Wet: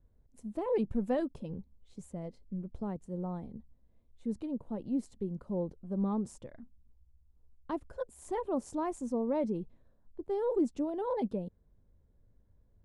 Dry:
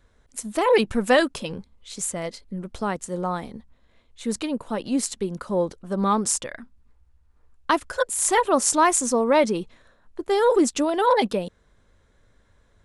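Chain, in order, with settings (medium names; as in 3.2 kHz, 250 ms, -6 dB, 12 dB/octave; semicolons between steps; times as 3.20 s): FFT filter 150 Hz 0 dB, 860 Hz -12 dB, 1.3 kHz -21 dB, 6 kHz -26 dB; trim -4.5 dB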